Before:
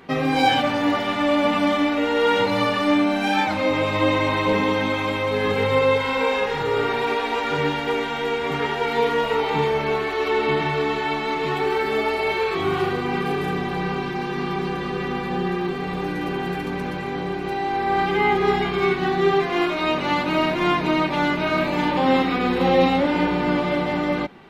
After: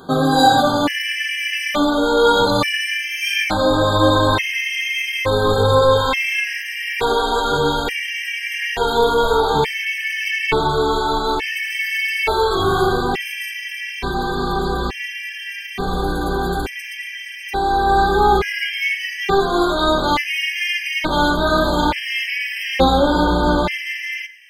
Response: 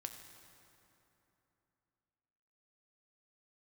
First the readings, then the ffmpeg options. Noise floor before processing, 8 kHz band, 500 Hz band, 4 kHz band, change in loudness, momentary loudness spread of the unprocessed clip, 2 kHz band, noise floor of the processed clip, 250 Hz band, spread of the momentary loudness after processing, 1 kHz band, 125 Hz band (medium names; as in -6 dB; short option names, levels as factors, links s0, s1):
-27 dBFS, no reading, +2.0 dB, +7.0 dB, +3.5 dB, 7 LU, +5.0 dB, -31 dBFS, 0.0 dB, 10 LU, +4.0 dB, +4.0 dB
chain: -filter_complex "[0:a]highshelf=f=5000:g=12,acontrast=58,asubboost=boost=8:cutoff=55,asplit=2[s0][s1];[1:a]atrim=start_sample=2205,afade=t=out:st=0.16:d=0.01,atrim=end_sample=7497[s2];[s1][s2]afir=irnorm=-1:irlink=0,volume=2[s3];[s0][s3]amix=inputs=2:normalize=0,afftfilt=real='re*gt(sin(2*PI*0.57*pts/sr)*(1-2*mod(floor(b*sr/1024/1600),2)),0)':imag='im*gt(sin(2*PI*0.57*pts/sr)*(1-2*mod(floor(b*sr/1024/1600),2)),0)':win_size=1024:overlap=0.75,volume=0.473"